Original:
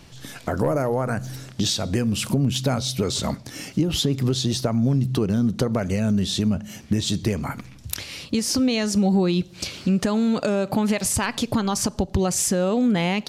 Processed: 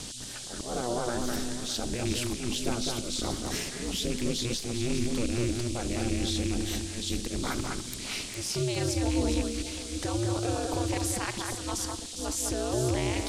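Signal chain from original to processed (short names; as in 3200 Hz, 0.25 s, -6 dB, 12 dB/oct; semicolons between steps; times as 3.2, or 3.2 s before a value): rattling part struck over -20 dBFS, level -22 dBFS; reverse; compressor 10:1, threshold -28 dBFS, peak gain reduction 12.5 dB; reverse; auto swell 0.24 s; limiter -27 dBFS, peak gain reduction 10 dB; ring modulator 120 Hz; on a send: echo with dull and thin repeats by turns 0.203 s, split 2200 Hz, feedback 56%, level -3 dB; on the sum: band noise 3100–9400 Hz -49 dBFS; gain +7 dB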